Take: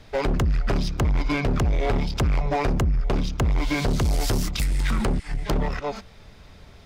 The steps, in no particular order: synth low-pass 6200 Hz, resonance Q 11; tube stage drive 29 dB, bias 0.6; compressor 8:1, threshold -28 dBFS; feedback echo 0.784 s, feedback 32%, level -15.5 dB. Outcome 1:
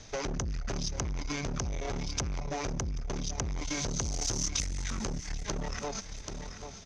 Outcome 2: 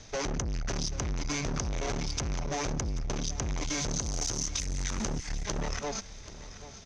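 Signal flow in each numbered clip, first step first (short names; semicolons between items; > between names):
feedback echo > compressor > tube stage > synth low-pass; tube stage > synth low-pass > compressor > feedback echo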